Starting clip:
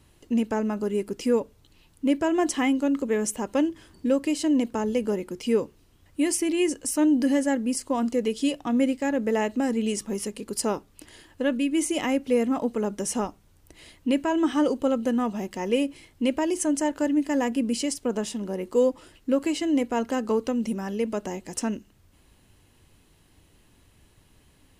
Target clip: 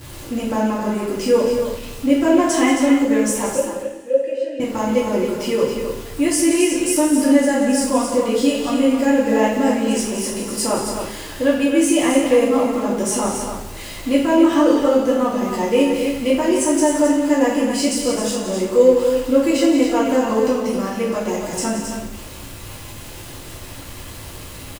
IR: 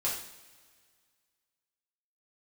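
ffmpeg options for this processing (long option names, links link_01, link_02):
-filter_complex "[0:a]aeval=exprs='val(0)+0.5*0.0141*sgn(val(0))':channel_layout=same,asettb=1/sr,asplit=3[link_01][link_02][link_03];[link_01]atrim=end=3.554[link_04];[link_02]atrim=start=3.55:end=4.6,asetpts=PTS-STARTPTS,afade=type=in:duration=0.004:curve=qsin,afade=type=out:start_time=1.046:duration=0.004:curve=qsin,asplit=3[link_05][link_06][link_07];[link_05]bandpass=frequency=530:width_type=q:width=8,volume=0dB[link_08];[link_06]bandpass=frequency=1840:width_type=q:width=8,volume=-6dB[link_09];[link_07]bandpass=frequency=2480:width_type=q:width=8,volume=-9dB[link_10];[link_08][link_09][link_10]amix=inputs=3:normalize=0[link_11];[link_03]atrim=start=4.596[link_12];[link_04][link_11]acrossfade=duration=0.004:curve1=hsin:curve2=qsin[link_13];[link_13][link_12]acrossfade=duration=0.004:curve1=qsin:curve2=hsin,aecho=1:1:174.9|268.2:0.316|0.447[link_14];[1:a]atrim=start_sample=2205[link_15];[link_14][link_15]afir=irnorm=-1:irlink=0,volume=1dB"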